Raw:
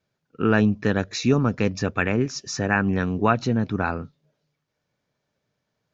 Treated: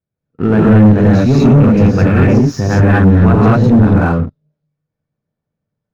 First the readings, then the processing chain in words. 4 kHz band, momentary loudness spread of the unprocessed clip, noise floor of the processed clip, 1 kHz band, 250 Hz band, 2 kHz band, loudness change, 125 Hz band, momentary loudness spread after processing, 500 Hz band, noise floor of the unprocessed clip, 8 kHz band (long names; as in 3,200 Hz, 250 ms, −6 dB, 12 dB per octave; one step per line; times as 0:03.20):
+1.5 dB, 7 LU, −80 dBFS, +8.0 dB, +14.0 dB, +5.0 dB, +13.5 dB, +17.5 dB, 7 LU, +11.0 dB, −79 dBFS, can't be measured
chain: low-shelf EQ 240 Hz +11 dB
reverb whose tail is shaped and stops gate 250 ms rising, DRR −6.5 dB
leveller curve on the samples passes 3
high-shelf EQ 2,400 Hz −12 dB
level −7.5 dB